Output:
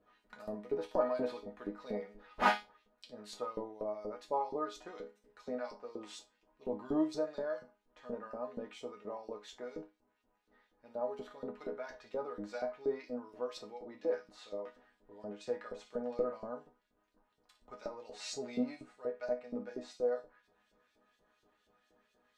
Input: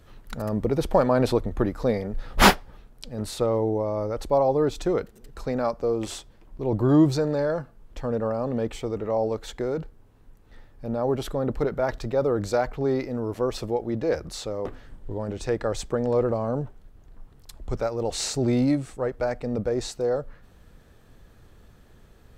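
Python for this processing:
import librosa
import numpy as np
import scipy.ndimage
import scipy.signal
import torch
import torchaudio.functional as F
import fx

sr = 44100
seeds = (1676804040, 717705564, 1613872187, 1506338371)

p1 = x + fx.room_flutter(x, sr, wall_m=9.9, rt60_s=0.21, dry=0)
p2 = fx.hpss(p1, sr, part='percussive', gain_db=-3)
p3 = fx.filter_lfo_bandpass(p2, sr, shape='saw_up', hz=4.2, low_hz=410.0, high_hz=5400.0, q=0.92)
p4 = fx.resonator_bank(p3, sr, root=56, chord='minor', decay_s=0.22)
y = p4 * 10.0 ** (8.0 / 20.0)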